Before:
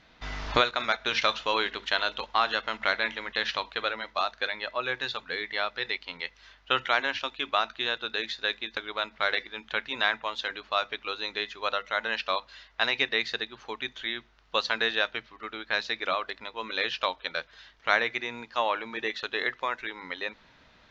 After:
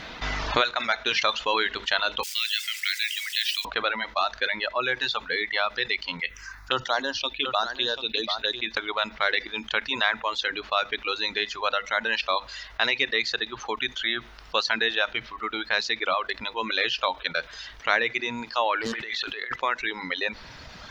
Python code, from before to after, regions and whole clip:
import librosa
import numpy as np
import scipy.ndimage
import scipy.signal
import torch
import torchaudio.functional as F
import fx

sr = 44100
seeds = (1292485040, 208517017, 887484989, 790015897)

y = fx.chain(x, sr, fx.zero_step(step_db=-35.0),
    fx.cheby2_highpass(hz=670.0, order=4, stop_db=60),
    fx.resample_bad(factor=2, down='filtered', up='hold'), at=(2.23, 3.65))
y = fx.chain(y, sr, fx.high_shelf(hz=5900.0, db=5.5),
    fx.env_phaser(low_hz=470.0, high_hz=2300.0, full_db=-25.0),
    fx.echo_single(ms=740, db=-10.5), at=(6.2, 8.61))
y = fx.chain(y, sr, fx.high_shelf(hz=5000.0, db=8.0),
    fx.over_compress(threshold_db=-41.0, ratio=-1.0),
    fx.doppler_dist(depth_ms=0.6), at=(18.81, 19.56))
y = fx.dereverb_blind(y, sr, rt60_s=1.7)
y = fx.low_shelf(y, sr, hz=220.0, db=-4.0)
y = fx.env_flatten(y, sr, amount_pct=50)